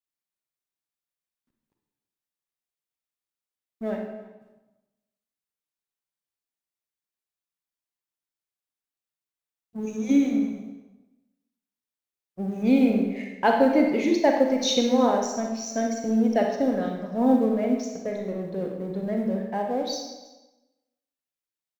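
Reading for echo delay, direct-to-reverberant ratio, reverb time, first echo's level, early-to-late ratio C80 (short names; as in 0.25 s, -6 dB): 0.329 s, 1.5 dB, 1.1 s, -20.5 dB, 6.0 dB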